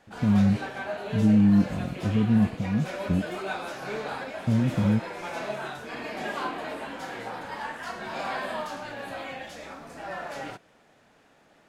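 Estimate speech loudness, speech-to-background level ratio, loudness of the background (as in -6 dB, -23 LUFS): -24.5 LUFS, 10.5 dB, -35.0 LUFS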